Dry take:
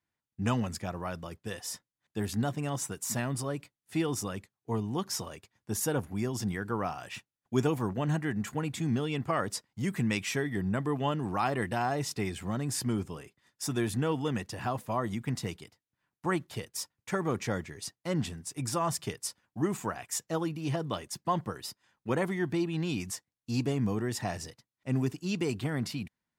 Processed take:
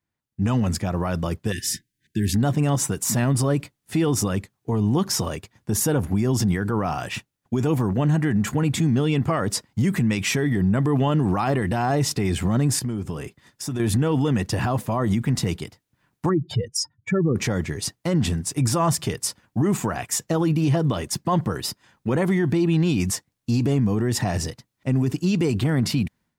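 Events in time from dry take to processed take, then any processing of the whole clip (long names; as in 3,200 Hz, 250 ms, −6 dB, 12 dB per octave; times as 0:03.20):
0:01.52–0:02.35: linear-phase brick-wall band-stop 410–1,500 Hz
0:12.79–0:13.80: downward compressor 5 to 1, threshold −42 dBFS
0:16.29–0:17.36: expanding power law on the bin magnitudes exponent 2.4
whole clip: low-shelf EQ 400 Hz +7 dB; automatic gain control gain up to 12.5 dB; brickwall limiter −13.5 dBFS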